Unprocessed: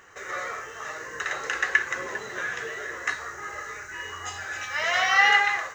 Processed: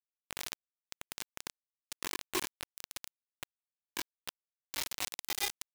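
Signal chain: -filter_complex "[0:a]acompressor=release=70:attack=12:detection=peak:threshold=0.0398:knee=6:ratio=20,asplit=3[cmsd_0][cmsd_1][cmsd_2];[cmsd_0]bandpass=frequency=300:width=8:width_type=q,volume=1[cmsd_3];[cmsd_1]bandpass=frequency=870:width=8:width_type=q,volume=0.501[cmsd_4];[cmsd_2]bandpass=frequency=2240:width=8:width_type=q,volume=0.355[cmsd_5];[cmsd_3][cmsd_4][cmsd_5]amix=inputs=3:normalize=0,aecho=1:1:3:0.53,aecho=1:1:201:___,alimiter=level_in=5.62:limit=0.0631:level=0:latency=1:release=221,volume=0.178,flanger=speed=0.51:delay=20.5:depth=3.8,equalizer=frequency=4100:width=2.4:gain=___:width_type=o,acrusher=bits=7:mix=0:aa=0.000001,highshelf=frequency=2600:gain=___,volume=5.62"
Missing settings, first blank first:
0.398, -11, 10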